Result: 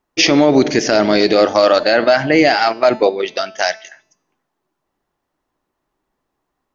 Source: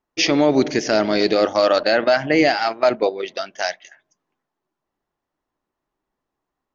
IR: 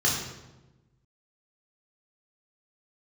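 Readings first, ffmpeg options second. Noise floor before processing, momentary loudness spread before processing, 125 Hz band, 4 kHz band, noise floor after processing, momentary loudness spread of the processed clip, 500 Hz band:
−82 dBFS, 10 LU, +5.5 dB, +5.0 dB, −76 dBFS, 8 LU, +4.5 dB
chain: -af "bandreject=frequency=219.6:width_type=h:width=4,bandreject=frequency=439.2:width_type=h:width=4,bandreject=frequency=658.8:width_type=h:width=4,bandreject=frequency=878.4:width_type=h:width=4,bandreject=frequency=1098:width_type=h:width=4,bandreject=frequency=1317.6:width_type=h:width=4,bandreject=frequency=1537.2:width_type=h:width=4,bandreject=frequency=1756.8:width_type=h:width=4,bandreject=frequency=1976.4:width_type=h:width=4,bandreject=frequency=2196:width_type=h:width=4,bandreject=frequency=2415.6:width_type=h:width=4,bandreject=frequency=2635.2:width_type=h:width=4,bandreject=frequency=2854.8:width_type=h:width=4,bandreject=frequency=3074.4:width_type=h:width=4,bandreject=frequency=3294:width_type=h:width=4,bandreject=frequency=3513.6:width_type=h:width=4,bandreject=frequency=3733.2:width_type=h:width=4,bandreject=frequency=3952.8:width_type=h:width=4,bandreject=frequency=4172.4:width_type=h:width=4,bandreject=frequency=4392:width_type=h:width=4,bandreject=frequency=4611.6:width_type=h:width=4,bandreject=frequency=4831.2:width_type=h:width=4,bandreject=frequency=5050.8:width_type=h:width=4,bandreject=frequency=5270.4:width_type=h:width=4,bandreject=frequency=5490:width_type=h:width=4,bandreject=frequency=5709.6:width_type=h:width=4,bandreject=frequency=5929.2:width_type=h:width=4,bandreject=frequency=6148.8:width_type=h:width=4,bandreject=frequency=6368.4:width_type=h:width=4,bandreject=frequency=6588:width_type=h:width=4,bandreject=frequency=6807.6:width_type=h:width=4,bandreject=frequency=7027.2:width_type=h:width=4,bandreject=frequency=7246.8:width_type=h:width=4,bandreject=frequency=7466.4:width_type=h:width=4,bandreject=frequency=7686:width_type=h:width=4,alimiter=level_in=8dB:limit=-1dB:release=50:level=0:latency=1,volume=-1dB"

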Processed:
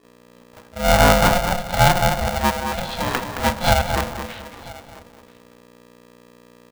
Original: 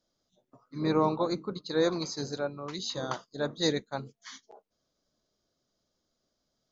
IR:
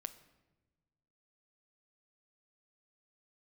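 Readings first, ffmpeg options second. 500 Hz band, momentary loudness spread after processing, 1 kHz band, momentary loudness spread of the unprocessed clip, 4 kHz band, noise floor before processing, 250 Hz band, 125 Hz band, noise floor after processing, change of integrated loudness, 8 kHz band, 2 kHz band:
+9.0 dB, 19 LU, +17.5 dB, 18 LU, +11.5 dB, −81 dBFS, +6.5 dB, +15.5 dB, −50 dBFS, +12.5 dB, can't be measured, +19.5 dB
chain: -filter_complex "[0:a]asplit=2[link_01][link_02];[link_02]adelay=218,lowpass=frequency=2000:poles=1,volume=-7dB,asplit=2[link_03][link_04];[link_04]adelay=218,lowpass=frequency=2000:poles=1,volume=0.3,asplit=2[link_05][link_06];[link_06]adelay=218,lowpass=frequency=2000:poles=1,volume=0.3,asplit=2[link_07][link_08];[link_08]adelay=218,lowpass=frequency=2000:poles=1,volume=0.3[link_09];[link_03][link_05][link_07][link_09]amix=inputs=4:normalize=0[link_10];[link_01][link_10]amix=inputs=2:normalize=0,aeval=exprs='val(0)+0.00141*(sin(2*PI*60*n/s)+sin(2*PI*2*60*n/s)/2+sin(2*PI*3*60*n/s)/3+sin(2*PI*4*60*n/s)/4+sin(2*PI*5*60*n/s)/5)':channel_layout=same,asplit=2[link_11][link_12];[link_12]highpass=100[link_13];[1:a]atrim=start_sample=2205,adelay=35[link_14];[link_13][link_14]afir=irnorm=-1:irlink=0,volume=14dB[link_15];[link_11][link_15]amix=inputs=2:normalize=0,aresample=8000,aresample=44100,aecho=1:1:985:0.0841,aeval=exprs='val(0)*sgn(sin(2*PI*360*n/s))':channel_layout=same"

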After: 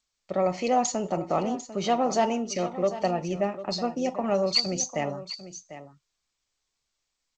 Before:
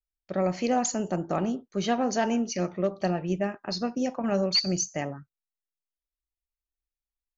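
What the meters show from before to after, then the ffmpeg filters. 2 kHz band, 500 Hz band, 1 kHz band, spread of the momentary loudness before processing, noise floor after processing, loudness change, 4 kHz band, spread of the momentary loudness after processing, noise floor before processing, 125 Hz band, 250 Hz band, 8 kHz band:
−1.0 dB, +2.5 dB, +4.0 dB, 7 LU, −81 dBFS, +1.0 dB, +0.5 dB, 13 LU, below −85 dBFS, −2.5 dB, −2.0 dB, can't be measured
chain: -filter_complex "[0:a]equalizer=frequency=1600:width_type=o:width=0.21:gain=-14.5,acrossover=split=470|1800[link_01][link_02][link_03];[link_01]alimiter=level_in=2.5dB:limit=-24dB:level=0:latency=1:release=21,volume=-2.5dB[link_04];[link_02]acontrast=26[link_05];[link_03]aecho=1:1:7:0.99[link_06];[link_04][link_05][link_06]amix=inputs=3:normalize=0,highshelf=frequency=6300:gain=-5,aecho=1:1:747:0.211" -ar 16000 -c:a g722

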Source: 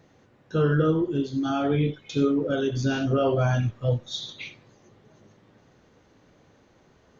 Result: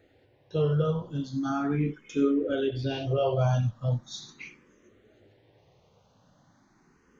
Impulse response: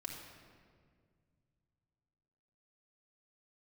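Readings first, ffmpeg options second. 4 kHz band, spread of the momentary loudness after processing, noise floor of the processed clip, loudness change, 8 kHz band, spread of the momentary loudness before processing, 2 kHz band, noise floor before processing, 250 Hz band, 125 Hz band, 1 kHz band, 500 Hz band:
−5.5 dB, 14 LU, −64 dBFS, −3.0 dB, can't be measured, 10 LU, −7.5 dB, −60 dBFS, −4.0 dB, −2.5 dB, −3.5 dB, −3.0 dB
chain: -filter_complex "[0:a]asplit=2[link_01][link_02];[link_02]afreqshift=0.39[link_03];[link_01][link_03]amix=inputs=2:normalize=1,volume=-1dB"

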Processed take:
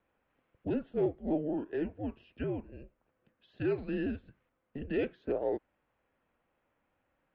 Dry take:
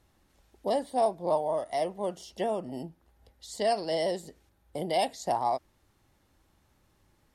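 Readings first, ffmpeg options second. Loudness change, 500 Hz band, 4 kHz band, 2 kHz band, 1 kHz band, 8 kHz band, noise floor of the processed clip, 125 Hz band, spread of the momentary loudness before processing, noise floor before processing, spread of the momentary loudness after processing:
−4.5 dB, −5.5 dB, −18.5 dB, −3.0 dB, −18.5 dB, below −35 dB, −80 dBFS, +3.0 dB, 13 LU, −69 dBFS, 11 LU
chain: -af "highpass=frequency=380:width_type=q:width=0.5412,highpass=frequency=380:width_type=q:width=1.307,lowpass=frequency=3000:width_type=q:width=0.5176,lowpass=frequency=3000:width_type=q:width=0.7071,lowpass=frequency=3000:width_type=q:width=1.932,afreqshift=-300,volume=-4dB"

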